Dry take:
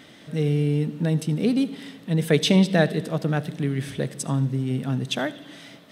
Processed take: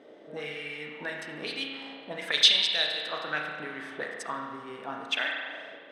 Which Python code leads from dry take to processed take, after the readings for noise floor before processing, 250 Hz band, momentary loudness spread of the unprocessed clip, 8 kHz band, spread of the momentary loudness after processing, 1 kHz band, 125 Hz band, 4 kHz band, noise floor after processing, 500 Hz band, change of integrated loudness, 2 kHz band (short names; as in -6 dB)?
-48 dBFS, -21.0 dB, 12 LU, -4.0 dB, 19 LU, -2.0 dB, -30.0 dB, +6.5 dB, -50 dBFS, -12.0 dB, -4.5 dB, +1.5 dB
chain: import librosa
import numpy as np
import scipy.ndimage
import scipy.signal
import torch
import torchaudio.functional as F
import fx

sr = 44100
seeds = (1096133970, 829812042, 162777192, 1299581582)

y = fx.bass_treble(x, sr, bass_db=-10, treble_db=5)
y = fx.auto_wah(y, sr, base_hz=440.0, top_hz=3700.0, q=2.4, full_db=-20.0, direction='up')
y = fx.rev_spring(y, sr, rt60_s=1.6, pass_ms=(33,), chirp_ms=20, drr_db=0.5)
y = F.gain(torch.from_numpy(y), 5.5).numpy()